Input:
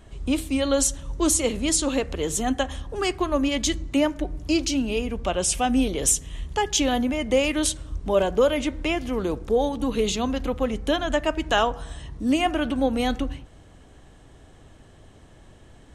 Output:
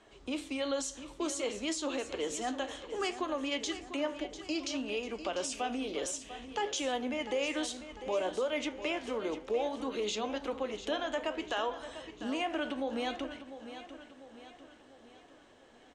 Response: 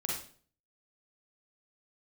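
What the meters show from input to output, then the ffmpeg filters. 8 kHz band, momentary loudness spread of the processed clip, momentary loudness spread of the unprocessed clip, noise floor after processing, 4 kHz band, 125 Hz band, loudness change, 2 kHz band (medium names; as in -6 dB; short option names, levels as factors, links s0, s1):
-15.5 dB, 9 LU, 6 LU, -59 dBFS, -9.0 dB, under -20 dB, -11.5 dB, -8.5 dB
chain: -filter_complex "[0:a]flanger=delay=9.2:depth=9.8:regen=72:speed=0.59:shape=sinusoidal,alimiter=limit=0.0708:level=0:latency=1:release=131,acrossover=split=280 7700:gain=0.0891 1 0.0631[s0][s1][s2];[s0][s1][s2]amix=inputs=3:normalize=0,asplit=2[s3][s4];[s4]aecho=0:1:697|1394|2091|2788|3485:0.251|0.121|0.0579|0.0278|0.0133[s5];[s3][s5]amix=inputs=2:normalize=0"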